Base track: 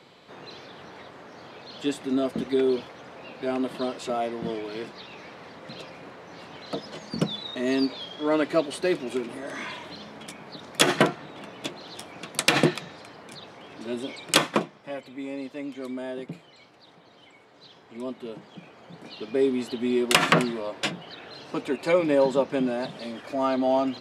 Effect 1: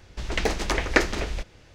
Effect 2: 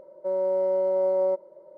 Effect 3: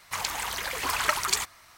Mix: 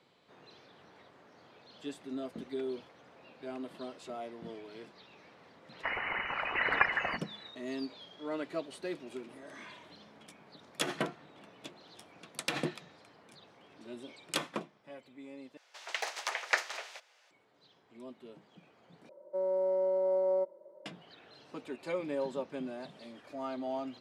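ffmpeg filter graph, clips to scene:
ffmpeg -i bed.wav -i cue0.wav -i cue1.wav -i cue2.wav -filter_complex "[0:a]volume=-14dB[link_01];[3:a]lowpass=frequency=2600:width_type=q:width=0.5098,lowpass=frequency=2600:width_type=q:width=0.6013,lowpass=frequency=2600:width_type=q:width=0.9,lowpass=frequency=2600:width_type=q:width=2.563,afreqshift=-3000[link_02];[1:a]highpass=frequency=650:width=0.5412,highpass=frequency=650:width=1.3066[link_03];[2:a]highpass=frequency=170:width=0.5412,highpass=frequency=170:width=1.3066[link_04];[link_01]asplit=3[link_05][link_06][link_07];[link_05]atrim=end=15.574[link_08];[link_03]atrim=end=1.74,asetpts=PTS-STARTPTS,volume=-7.5dB[link_09];[link_06]atrim=start=17.306:end=19.094[link_10];[link_04]atrim=end=1.77,asetpts=PTS-STARTPTS,volume=-6dB[link_11];[link_07]atrim=start=20.856[link_12];[link_02]atrim=end=1.77,asetpts=PTS-STARTPTS,volume=-1dB,afade=type=in:duration=0.004:curve=hsin,afade=type=out:start_time=1.766:duration=0.004:curve=hsin,adelay=5720[link_13];[link_08][link_09]acrossfade=duration=0.004:curve1=hsin:curve2=hsin[link_14];[link_14][link_10]acrossfade=duration=0.004:curve1=hsin:curve2=hsin[link_15];[link_15][link_11]acrossfade=duration=0.004:curve1=hsin:curve2=hsin[link_16];[link_16][link_12]acrossfade=duration=0.004:curve1=hsin:curve2=hsin[link_17];[link_17][link_13]amix=inputs=2:normalize=0" out.wav

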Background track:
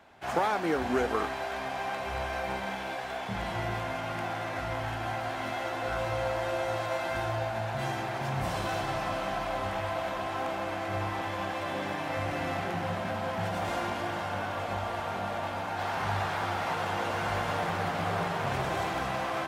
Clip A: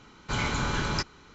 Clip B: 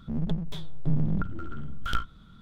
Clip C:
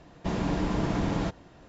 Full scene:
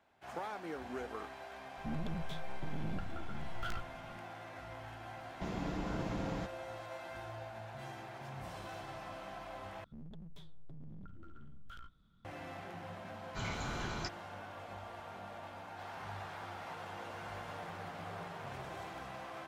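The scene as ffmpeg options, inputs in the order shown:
ffmpeg -i bed.wav -i cue0.wav -i cue1.wav -i cue2.wav -filter_complex "[2:a]asplit=2[link_01][link_02];[0:a]volume=-14.5dB[link_03];[link_01]asoftclip=type=tanh:threshold=-26.5dB[link_04];[link_02]alimiter=level_in=0.5dB:limit=-24dB:level=0:latency=1:release=21,volume=-0.5dB[link_05];[link_03]asplit=2[link_06][link_07];[link_06]atrim=end=9.844[link_08];[link_05]atrim=end=2.41,asetpts=PTS-STARTPTS,volume=-17.5dB[link_09];[link_07]atrim=start=12.246[link_10];[link_04]atrim=end=2.41,asetpts=PTS-STARTPTS,volume=-5.5dB,afade=type=in:duration=0.004:curve=hsin,afade=type=out:start_time=2.406:duration=0.004:curve=hsin,adelay=1770[link_11];[3:a]atrim=end=1.68,asetpts=PTS-STARTPTS,volume=-11dB,afade=type=in:duration=0.004:curve=hsin,afade=type=out:start_time=1.676:duration=0.004:curve=hsin,adelay=5160[link_12];[1:a]atrim=end=1.34,asetpts=PTS-STARTPTS,volume=-12dB,afade=type=in:duration=0.004:curve=hsin,afade=type=out:start_time=1.336:duration=0.004:curve=hsin,adelay=13060[link_13];[link_08][link_09]acrossfade=duration=0.004:curve1=hsin:curve2=hsin[link_14];[link_14][link_10]acrossfade=duration=0.004:curve1=hsin:curve2=hsin[link_15];[link_15][link_11][link_12][link_13]amix=inputs=4:normalize=0" out.wav

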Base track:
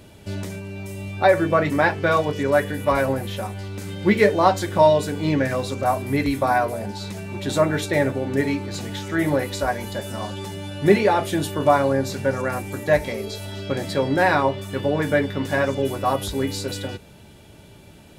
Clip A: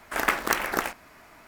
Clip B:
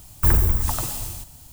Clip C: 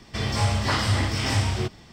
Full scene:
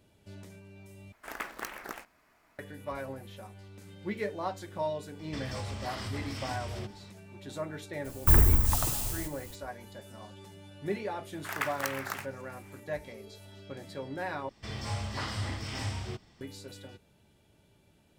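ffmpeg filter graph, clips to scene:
ffmpeg -i bed.wav -i cue0.wav -i cue1.wav -i cue2.wav -filter_complex "[1:a]asplit=2[link_01][link_02];[3:a]asplit=2[link_03][link_04];[0:a]volume=-18dB[link_05];[link_03]acompressor=threshold=-27dB:ratio=6:attack=3.2:release=140:knee=1:detection=peak[link_06];[link_02]highpass=820[link_07];[link_05]asplit=3[link_08][link_09][link_10];[link_08]atrim=end=1.124[link_11];[link_01]atrim=end=1.47,asetpts=PTS-STARTPTS,volume=-14.5dB[link_12];[link_09]atrim=start=2.586:end=14.494[link_13];[link_04]atrim=end=1.92,asetpts=PTS-STARTPTS,volume=-12dB[link_14];[link_10]atrim=start=16.406[link_15];[link_06]atrim=end=1.92,asetpts=PTS-STARTPTS,volume=-8dB,afade=type=in:duration=0.004:curve=hsin,afade=type=out:start_time=1.916:duration=0.004:curve=hsin,adelay=5190[link_16];[2:a]atrim=end=1.52,asetpts=PTS-STARTPTS,volume=-3dB,afade=type=in:duration=0.02,afade=type=out:start_time=1.5:duration=0.02,adelay=8040[link_17];[link_07]atrim=end=1.47,asetpts=PTS-STARTPTS,volume=-8.5dB,afade=type=in:duration=0.004:curve=hsin,afade=type=out:start_time=1.466:duration=0.004:curve=hsin,adelay=11330[link_18];[link_11][link_12]acrossfade=duration=0.004:curve1=hsin:curve2=hsin[link_19];[link_19][link_13]acrossfade=duration=0.004:curve1=hsin:curve2=hsin[link_20];[link_20][link_14]acrossfade=duration=0.004:curve1=hsin:curve2=hsin[link_21];[link_21][link_15]acrossfade=duration=0.004:curve1=hsin:curve2=hsin[link_22];[link_22][link_16][link_17][link_18]amix=inputs=4:normalize=0" out.wav

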